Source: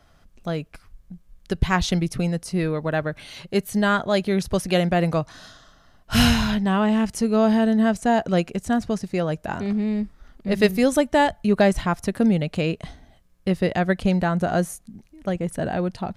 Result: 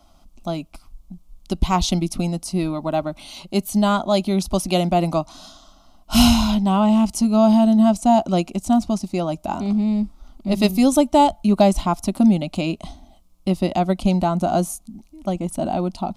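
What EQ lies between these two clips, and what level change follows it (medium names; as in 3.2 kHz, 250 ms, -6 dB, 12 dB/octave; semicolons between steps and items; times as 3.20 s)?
static phaser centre 460 Hz, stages 6; +5.5 dB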